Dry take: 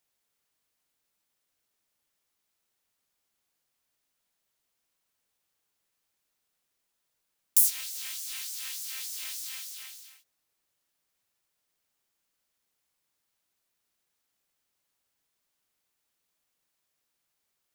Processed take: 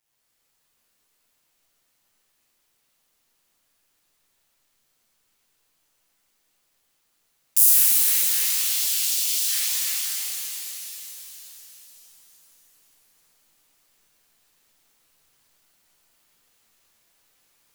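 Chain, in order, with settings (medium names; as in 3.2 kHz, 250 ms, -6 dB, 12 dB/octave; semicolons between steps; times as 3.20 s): 8.57–9.35 s: steep high-pass 2.7 kHz; in parallel at -1 dB: gain riding within 5 dB 2 s; on the sum: AM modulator 110 Hz, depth 85%; pitch-shifted reverb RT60 3.5 s, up +7 st, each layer -2 dB, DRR -8.5 dB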